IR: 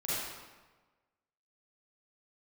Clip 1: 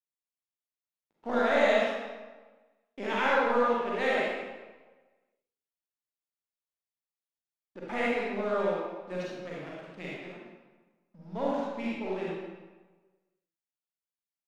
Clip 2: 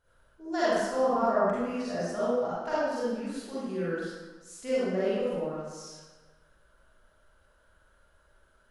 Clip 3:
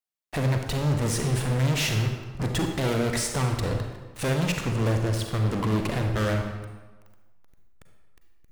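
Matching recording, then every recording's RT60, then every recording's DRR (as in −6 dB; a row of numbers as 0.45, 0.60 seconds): 2; 1.3, 1.3, 1.3 seconds; −6.5, −10.5, 3.5 decibels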